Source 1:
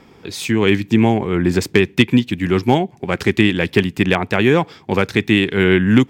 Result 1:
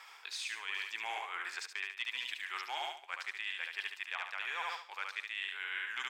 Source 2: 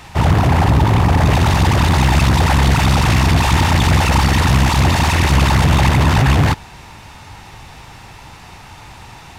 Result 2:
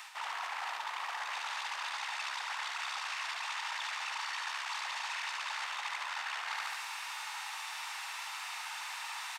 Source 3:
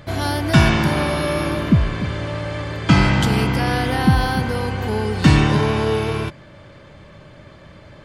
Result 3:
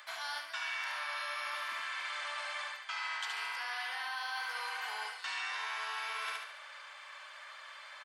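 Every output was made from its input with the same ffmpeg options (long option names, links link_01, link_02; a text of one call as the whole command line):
ffmpeg -i in.wav -filter_complex "[0:a]highpass=frequency=1000:width=0.5412,highpass=frequency=1000:width=1.3066,aecho=1:1:72|144|216|288|360|432:0.531|0.244|0.112|0.0517|0.0238|0.0109,acrossover=split=7400[link_01][link_02];[link_02]acompressor=threshold=-49dB:ratio=4:attack=1:release=60[link_03];[link_01][link_03]amix=inputs=2:normalize=0,equalizer=frequency=8400:width=5:gain=3,areverse,acompressor=threshold=-36dB:ratio=10,areverse" out.wav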